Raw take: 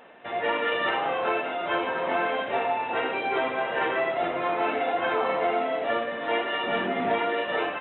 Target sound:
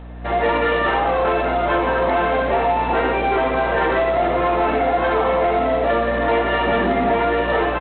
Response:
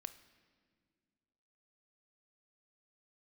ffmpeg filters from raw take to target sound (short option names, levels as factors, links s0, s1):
-filter_complex "[0:a]bandreject=f=61.08:t=h:w=4,bandreject=f=122.16:t=h:w=4,bandreject=f=183.24:t=h:w=4,bandreject=f=244.32:t=h:w=4,bandreject=f=305.4:t=h:w=4,bandreject=f=366.48:t=h:w=4,bandreject=f=427.56:t=h:w=4,bandreject=f=488.64:t=h:w=4,bandreject=f=549.72:t=h:w=4,bandreject=f=610.8:t=h:w=4,asplit=2[s0][s1];[s1]aecho=0:1:65|130|195:0.211|0.0528|0.0132[s2];[s0][s2]amix=inputs=2:normalize=0,aeval=exprs='val(0)+0.00891*(sin(2*PI*60*n/s)+sin(2*PI*2*60*n/s)/2+sin(2*PI*3*60*n/s)/3+sin(2*PI*4*60*n/s)/4+sin(2*PI*5*60*n/s)/5)':c=same,lowpass=1900,dynaudnorm=f=200:g=3:m=5.01,asoftclip=type=tanh:threshold=0.398,equalizer=f=110:t=o:w=0.2:g=-11,acompressor=threshold=0.0708:ratio=2.5,lowshelf=f=350:g=3.5,bandreject=f=1500:w=24,volume=1.5" -ar 8000 -c:a adpcm_g726 -b:a 24k